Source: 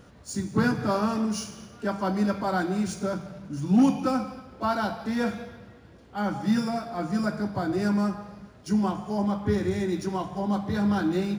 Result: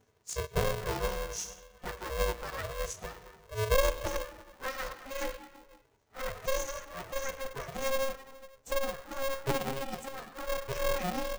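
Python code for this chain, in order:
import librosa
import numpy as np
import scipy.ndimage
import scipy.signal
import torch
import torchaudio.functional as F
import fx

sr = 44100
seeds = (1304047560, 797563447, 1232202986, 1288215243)

y = fx.pitch_glide(x, sr, semitones=6.5, runs='starting unshifted')
y = fx.graphic_eq_31(y, sr, hz=(160, 1000, 6300), db=(8, -4, 12))
y = fx.noise_reduce_blind(y, sr, reduce_db=12)
y = fx.env_flanger(y, sr, rest_ms=6.1, full_db=-21.5)
y = fx.peak_eq(y, sr, hz=930.0, db=-3.0, octaves=0.35)
y = fx.echo_stepped(y, sr, ms=112, hz=3200.0, octaves=-1.4, feedback_pct=70, wet_db=-9.5)
y = y * np.sign(np.sin(2.0 * np.pi * 270.0 * np.arange(len(y)) / sr))
y = y * librosa.db_to_amplitude(-5.0)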